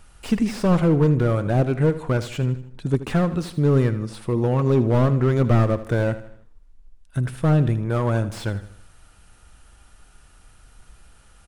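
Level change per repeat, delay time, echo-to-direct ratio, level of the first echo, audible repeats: -7.0 dB, 79 ms, -13.0 dB, -14.0 dB, 4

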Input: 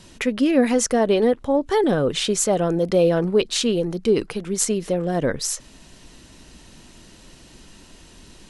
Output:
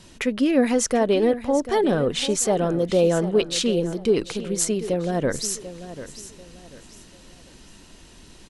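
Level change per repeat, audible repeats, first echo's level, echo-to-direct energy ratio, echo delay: -10.0 dB, 3, -13.5 dB, -13.0 dB, 0.741 s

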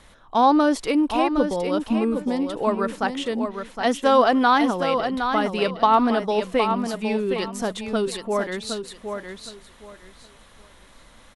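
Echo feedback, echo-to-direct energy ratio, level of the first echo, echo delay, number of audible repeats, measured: 22%, -7.0 dB, -7.0 dB, 0.764 s, 3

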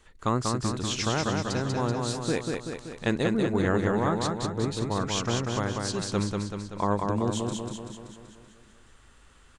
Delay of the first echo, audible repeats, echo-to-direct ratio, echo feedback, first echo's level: 0.191 s, 7, -1.5 dB, 58%, -3.5 dB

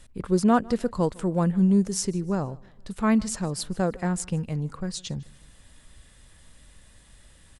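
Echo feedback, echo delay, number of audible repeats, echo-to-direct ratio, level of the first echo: 42%, 0.154 s, 2, -23.0 dB, -24.0 dB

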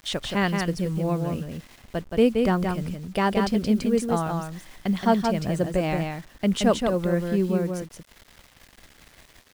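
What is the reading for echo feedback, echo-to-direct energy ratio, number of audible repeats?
no steady repeat, -4.5 dB, 1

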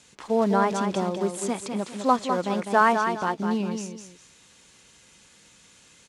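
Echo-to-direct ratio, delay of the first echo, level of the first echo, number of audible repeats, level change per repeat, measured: -6.0 dB, 0.203 s, -6.5 dB, 2, -10.5 dB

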